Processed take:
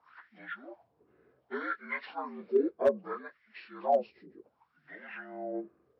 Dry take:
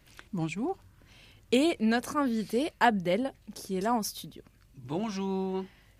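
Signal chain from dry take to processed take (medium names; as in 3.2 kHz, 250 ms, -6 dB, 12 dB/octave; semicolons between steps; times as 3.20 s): frequency axis rescaled in octaves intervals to 76%; wah-wah 0.65 Hz 370–2000 Hz, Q 5.5; hard clipper -25.5 dBFS, distortion -22 dB; trim +9 dB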